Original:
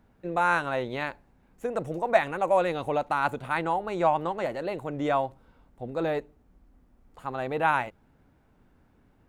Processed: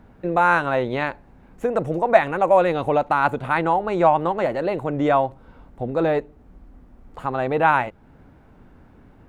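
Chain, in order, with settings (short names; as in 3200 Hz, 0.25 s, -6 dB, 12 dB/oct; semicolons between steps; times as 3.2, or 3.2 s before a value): high shelf 3700 Hz -10 dB; in parallel at +0.5 dB: compressor, threshold -41 dBFS, peak gain reduction 24 dB; on the sum: gain +6.5 dB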